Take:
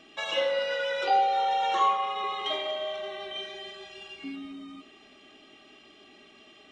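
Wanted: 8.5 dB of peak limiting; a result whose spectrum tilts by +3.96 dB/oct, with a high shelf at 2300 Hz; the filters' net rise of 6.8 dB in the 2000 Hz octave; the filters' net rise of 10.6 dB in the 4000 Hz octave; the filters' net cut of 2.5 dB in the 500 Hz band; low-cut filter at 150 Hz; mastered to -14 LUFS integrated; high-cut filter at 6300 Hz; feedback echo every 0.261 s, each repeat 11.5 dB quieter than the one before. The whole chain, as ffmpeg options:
-af "highpass=150,lowpass=6.3k,equalizer=f=500:t=o:g=-3.5,equalizer=f=2k:t=o:g=3.5,highshelf=f=2.3k:g=5,equalizer=f=4k:t=o:g=9,alimiter=limit=-19.5dB:level=0:latency=1,aecho=1:1:261|522|783:0.266|0.0718|0.0194,volume=13.5dB"

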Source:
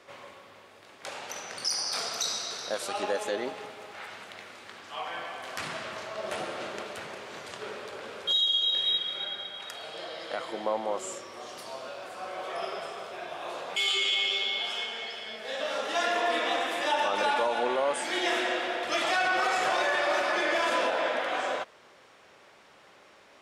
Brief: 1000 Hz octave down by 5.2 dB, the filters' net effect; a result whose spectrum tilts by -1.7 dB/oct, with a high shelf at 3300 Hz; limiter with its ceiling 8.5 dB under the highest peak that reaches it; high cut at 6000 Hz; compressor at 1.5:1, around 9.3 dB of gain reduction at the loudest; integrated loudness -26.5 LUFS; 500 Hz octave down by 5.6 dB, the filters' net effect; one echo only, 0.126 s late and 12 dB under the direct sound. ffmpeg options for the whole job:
-af "lowpass=6k,equalizer=f=500:t=o:g=-5.5,equalizer=f=1k:t=o:g=-4.5,highshelf=f=3.3k:g=-4.5,acompressor=threshold=-53dB:ratio=1.5,alimiter=level_in=12.5dB:limit=-24dB:level=0:latency=1,volume=-12.5dB,aecho=1:1:126:0.251,volume=18.5dB"

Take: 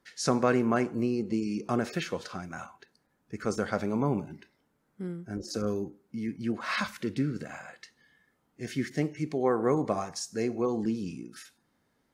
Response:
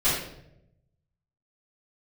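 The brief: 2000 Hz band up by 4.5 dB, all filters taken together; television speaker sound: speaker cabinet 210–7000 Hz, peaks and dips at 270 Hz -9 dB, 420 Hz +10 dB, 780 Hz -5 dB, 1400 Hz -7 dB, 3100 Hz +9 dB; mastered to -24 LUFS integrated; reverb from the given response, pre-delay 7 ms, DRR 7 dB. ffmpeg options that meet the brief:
-filter_complex "[0:a]equalizer=f=2k:t=o:g=7.5,asplit=2[a][b];[1:a]atrim=start_sample=2205,adelay=7[c];[b][c]afir=irnorm=-1:irlink=0,volume=-21dB[d];[a][d]amix=inputs=2:normalize=0,highpass=f=210:w=0.5412,highpass=f=210:w=1.3066,equalizer=f=270:t=q:w=4:g=-9,equalizer=f=420:t=q:w=4:g=10,equalizer=f=780:t=q:w=4:g=-5,equalizer=f=1.4k:t=q:w=4:g=-7,equalizer=f=3.1k:t=q:w=4:g=9,lowpass=f=7k:w=0.5412,lowpass=f=7k:w=1.3066,volume=4dB"

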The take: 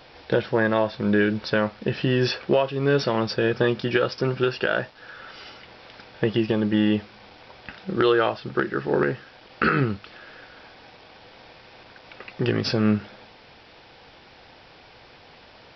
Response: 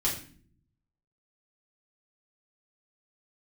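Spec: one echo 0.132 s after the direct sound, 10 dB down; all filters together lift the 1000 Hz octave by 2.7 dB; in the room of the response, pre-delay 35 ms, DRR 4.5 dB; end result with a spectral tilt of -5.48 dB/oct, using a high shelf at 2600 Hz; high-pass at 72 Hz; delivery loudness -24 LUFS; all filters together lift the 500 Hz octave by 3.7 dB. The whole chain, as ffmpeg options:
-filter_complex "[0:a]highpass=72,equalizer=f=500:t=o:g=4,equalizer=f=1k:t=o:g=3.5,highshelf=f=2.6k:g=-4.5,aecho=1:1:132:0.316,asplit=2[a][b];[1:a]atrim=start_sample=2205,adelay=35[c];[b][c]afir=irnorm=-1:irlink=0,volume=-12dB[d];[a][d]amix=inputs=2:normalize=0,volume=-4dB"

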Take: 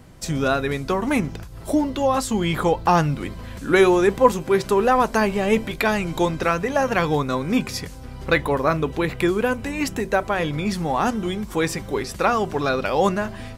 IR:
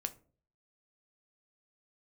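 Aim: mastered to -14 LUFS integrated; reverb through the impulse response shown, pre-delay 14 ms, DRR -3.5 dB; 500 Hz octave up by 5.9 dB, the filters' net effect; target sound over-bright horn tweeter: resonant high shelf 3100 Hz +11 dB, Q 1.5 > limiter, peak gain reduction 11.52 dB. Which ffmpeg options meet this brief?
-filter_complex "[0:a]equalizer=f=500:t=o:g=7.5,asplit=2[a][b];[1:a]atrim=start_sample=2205,adelay=14[c];[b][c]afir=irnorm=-1:irlink=0,volume=4dB[d];[a][d]amix=inputs=2:normalize=0,highshelf=f=3.1k:t=q:w=1.5:g=11,alimiter=limit=-3dB:level=0:latency=1"

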